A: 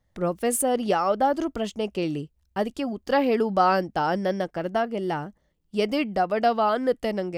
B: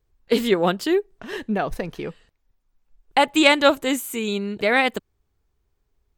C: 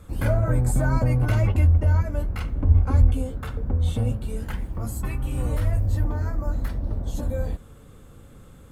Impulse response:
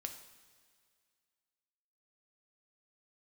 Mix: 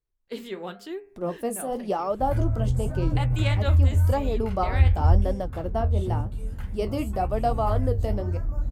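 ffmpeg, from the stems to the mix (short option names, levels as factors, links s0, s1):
-filter_complex "[0:a]firequalizer=gain_entry='entry(1100,0);entry(1500,-9);entry(11000,2)':delay=0.05:min_phase=1,adelay=1000,volume=1.06[s0];[1:a]bandreject=f=100.3:t=h:w=4,bandreject=f=200.6:t=h:w=4,bandreject=f=300.9:t=h:w=4,bandreject=f=401.2:t=h:w=4,bandreject=f=501.5:t=h:w=4,bandreject=f=601.8:t=h:w=4,bandreject=f=702.1:t=h:w=4,bandreject=f=802.4:t=h:w=4,bandreject=f=902.7:t=h:w=4,bandreject=f=1003:t=h:w=4,bandreject=f=1103.3:t=h:w=4,bandreject=f=1203.6:t=h:w=4,bandreject=f=1303.9:t=h:w=4,bandreject=f=1404.2:t=h:w=4,bandreject=f=1504.5:t=h:w=4,bandreject=f=1604.8:t=h:w=4,bandreject=f=1705.1:t=h:w=4,bandreject=f=1805.4:t=h:w=4,bandreject=f=1905.7:t=h:w=4,bandreject=f=2006:t=h:w=4,bandreject=f=2106.3:t=h:w=4,bandreject=f=2206.6:t=h:w=4,bandreject=f=2306.9:t=h:w=4,bandreject=f=2407.2:t=h:w=4,bandreject=f=2507.5:t=h:w=4,bandreject=f=2607.8:t=h:w=4,bandreject=f=2708.1:t=h:w=4,volume=0.266,asplit=2[s1][s2];[2:a]acrossover=split=140[s3][s4];[s4]acompressor=threshold=0.00126:ratio=1.5[s5];[s3][s5]amix=inputs=2:normalize=0,adelay=2100,volume=1.41[s6];[s2]apad=whole_len=373591[s7];[s0][s7]sidechaincompress=threshold=0.0141:ratio=8:attack=16:release=135[s8];[s8][s1][s6]amix=inputs=3:normalize=0,flanger=delay=5.9:depth=9.9:regen=-57:speed=0.93:shape=triangular"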